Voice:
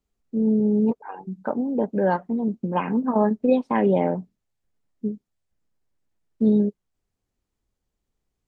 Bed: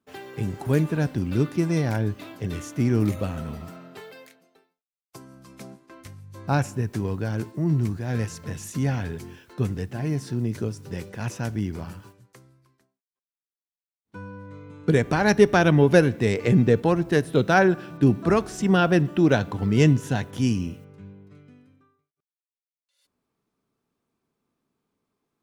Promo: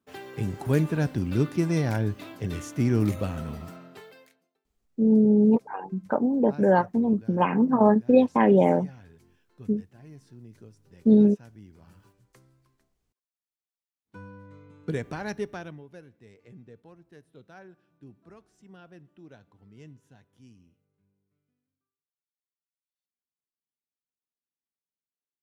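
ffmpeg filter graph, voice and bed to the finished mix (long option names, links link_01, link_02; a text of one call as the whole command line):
ffmpeg -i stem1.wav -i stem2.wav -filter_complex "[0:a]adelay=4650,volume=1.5dB[link_01];[1:a]volume=14.5dB,afade=type=out:start_time=3.7:duration=0.89:silence=0.105925,afade=type=in:start_time=11.8:duration=0.74:silence=0.158489,afade=type=out:start_time=14.11:duration=1.72:silence=0.0501187[link_02];[link_01][link_02]amix=inputs=2:normalize=0" out.wav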